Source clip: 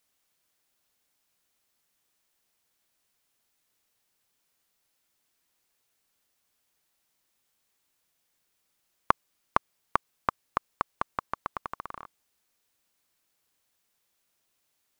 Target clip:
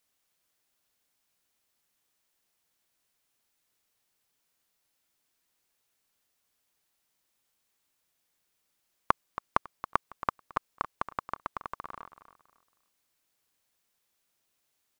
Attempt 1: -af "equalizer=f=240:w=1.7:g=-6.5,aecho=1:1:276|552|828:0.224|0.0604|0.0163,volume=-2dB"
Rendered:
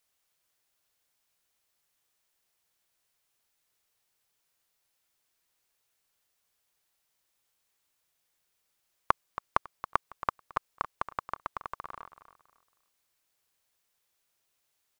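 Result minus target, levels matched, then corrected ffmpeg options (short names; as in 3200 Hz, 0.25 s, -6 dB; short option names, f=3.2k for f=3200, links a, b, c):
250 Hz band -4.0 dB
-af "aecho=1:1:276|552|828:0.224|0.0604|0.0163,volume=-2dB"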